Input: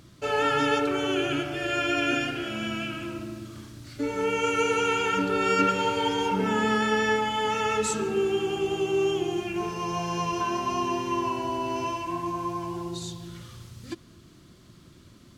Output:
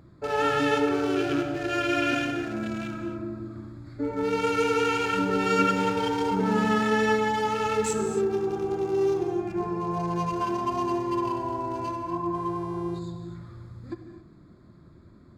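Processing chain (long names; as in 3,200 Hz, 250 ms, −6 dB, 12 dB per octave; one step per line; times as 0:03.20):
adaptive Wiener filter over 15 samples
reverb whose tail is shaped and stops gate 300 ms flat, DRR 6 dB
0:12.34–0:12.98: hum with harmonics 400 Hz, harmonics 30, −50 dBFS −7 dB per octave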